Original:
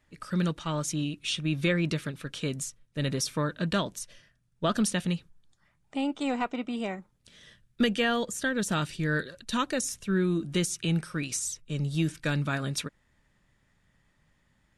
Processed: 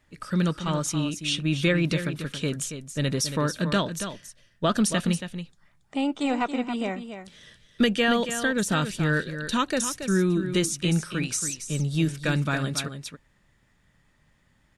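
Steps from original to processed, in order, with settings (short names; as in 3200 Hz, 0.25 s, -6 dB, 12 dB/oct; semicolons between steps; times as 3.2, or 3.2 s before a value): echo 0.278 s -9.5 dB; gain +3.5 dB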